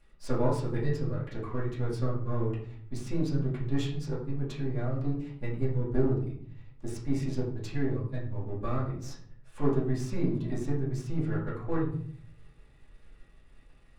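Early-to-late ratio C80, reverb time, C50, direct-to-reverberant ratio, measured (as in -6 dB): 9.5 dB, 0.60 s, 5.5 dB, -9.5 dB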